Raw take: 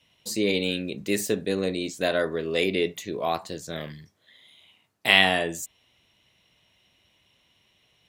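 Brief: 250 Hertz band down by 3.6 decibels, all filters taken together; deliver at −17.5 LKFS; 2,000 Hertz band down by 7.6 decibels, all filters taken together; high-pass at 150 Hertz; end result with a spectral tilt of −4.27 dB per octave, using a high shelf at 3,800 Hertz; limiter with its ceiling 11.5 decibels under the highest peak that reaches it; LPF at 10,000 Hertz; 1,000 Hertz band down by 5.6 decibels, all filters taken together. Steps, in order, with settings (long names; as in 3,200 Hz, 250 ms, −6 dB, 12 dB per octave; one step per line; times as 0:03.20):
high-pass filter 150 Hz
low-pass filter 10,000 Hz
parametric band 250 Hz −3.5 dB
parametric band 1,000 Hz −7 dB
parametric band 2,000 Hz −5.5 dB
high-shelf EQ 3,800 Hz −7.5 dB
level +15.5 dB
brickwall limiter −4.5 dBFS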